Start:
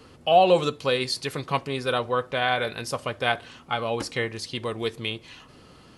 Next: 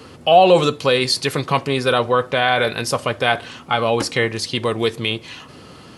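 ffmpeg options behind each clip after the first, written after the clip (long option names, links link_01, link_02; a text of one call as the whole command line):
ffmpeg -i in.wav -filter_complex "[0:a]highpass=74,asplit=2[link_01][link_02];[link_02]alimiter=limit=-17.5dB:level=0:latency=1:release=16,volume=2.5dB[link_03];[link_01][link_03]amix=inputs=2:normalize=0,volume=2.5dB" out.wav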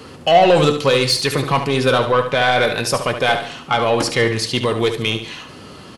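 ffmpeg -i in.wav -af "acontrast=90,flanger=delay=4.9:depth=3.8:regen=86:speed=0.35:shape=triangular,aecho=1:1:72|144|216|288:0.355|0.124|0.0435|0.0152" out.wav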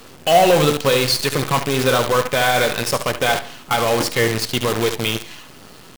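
ffmpeg -i in.wav -af "acrusher=bits=4:dc=4:mix=0:aa=0.000001,volume=-1.5dB" out.wav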